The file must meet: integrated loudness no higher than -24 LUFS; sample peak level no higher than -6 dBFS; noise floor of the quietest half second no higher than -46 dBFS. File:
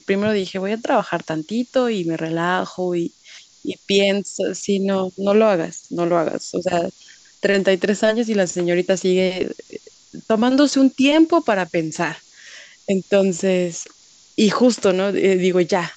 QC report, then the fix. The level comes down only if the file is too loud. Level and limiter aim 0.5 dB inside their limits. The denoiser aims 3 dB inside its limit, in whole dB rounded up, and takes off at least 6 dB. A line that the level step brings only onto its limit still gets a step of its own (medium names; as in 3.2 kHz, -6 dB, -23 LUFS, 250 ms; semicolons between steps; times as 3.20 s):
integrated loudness -19.0 LUFS: fail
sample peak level -5.0 dBFS: fail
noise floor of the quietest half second -50 dBFS: pass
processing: trim -5.5 dB